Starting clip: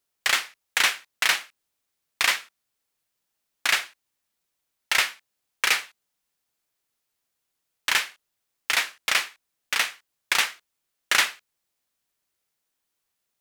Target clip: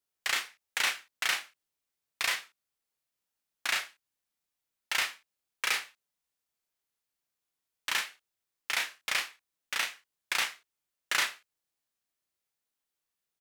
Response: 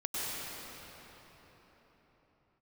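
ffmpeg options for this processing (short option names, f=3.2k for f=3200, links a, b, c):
-filter_complex "[0:a]asplit=2[a][b];[b]adelay=33,volume=-4dB[c];[a][c]amix=inputs=2:normalize=0,volume=-9dB"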